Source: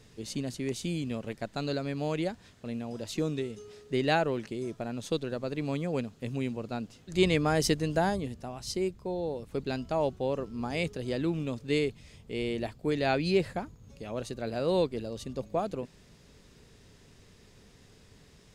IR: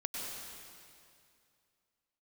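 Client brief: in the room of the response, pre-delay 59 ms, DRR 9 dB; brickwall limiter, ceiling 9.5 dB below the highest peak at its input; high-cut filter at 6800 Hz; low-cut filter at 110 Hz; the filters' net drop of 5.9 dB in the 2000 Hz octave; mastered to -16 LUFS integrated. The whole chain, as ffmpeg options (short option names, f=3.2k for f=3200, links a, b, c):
-filter_complex "[0:a]highpass=110,lowpass=6.8k,equalizer=f=2k:t=o:g=-8,alimiter=limit=-23dB:level=0:latency=1,asplit=2[a][b];[1:a]atrim=start_sample=2205,adelay=59[c];[b][c]afir=irnorm=-1:irlink=0,volume=-11.5dB[d];[a][d]amix=inputs=2:normalize=0,volume=18.5dB"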